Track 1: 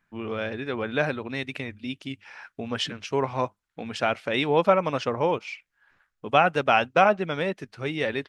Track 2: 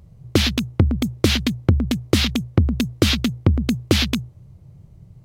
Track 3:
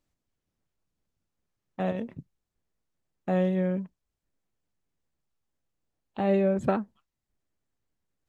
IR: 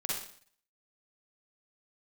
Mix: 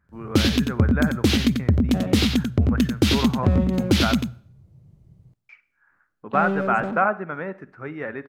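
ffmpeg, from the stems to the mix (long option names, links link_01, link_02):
-filter_complex "[0:a]firequalizer=gain_entry='entry(460,0);entry(1400,11);entry(3200,-16)':delay=0.05:min_phase=1,volume=-8.5dB,asplit=3[link_01][link_02][link_03];[link_01]atrim=end=4.2,asetpts=PTS-STARTPTS,afade=type=out:start_time=4.196:duration=0.004:curve=hsin[link_04];[link_02]atrim=start=4.2:end=5.49,asetpts=PTS-STARTPTS,volume=0[link_05];[link_03]atrim=start=5.49,asetpts=PTS-STARTPTS,afade=type=in:duration=0.004:curve=hsin[link_06];[link_04][link_05][link_06]concat=n=3:v=0:a=1,asplit=3[link_07][link_08][link_09];[link_08]volume=-18.5dB[link_10];[1:a]aeval=exprs='0.841*sin(PI/2*1.58*val(0)/0.841)':channel_layout=same,volume=-11.5dB,asplit=3[link_11][link_12][link_13];[link_12]volume=-22.5dB[link_14];[link_13]volume=-6dB[link_15];[2:a]alimiter=limit=-15dB:level=0:latency=1:release=397,volume=23.5dB,asoftclip=hard,volume=-23.5dB,adelay=150,volume=-2.5dB,asplit=2[link_16][link_17];[link_17]volume=-11dB[link_18];[link_09]apad=whole_len=231282[link_19];[link_11][link_19]sidechaingate=range=-33dB:threshold=-58dB:ratio=16:detection=peak[link_20];[3:a]atrim=start_sample=2205[link_21];[link_10][link_14]amix=inputs=2:normalize=0[link_22];[link_22][link_21]afir=irnorm=-1:irlink=0[link_23];[link_15][link_18]amix=inputs=2:normalize=0,aecho=0:1:91:1[link_24];[link_07][link_20][link_16][link_23][link_24]amix=inputs=5:normalize=0,equalizer=frequency=240:width=0.69:gain=5.5"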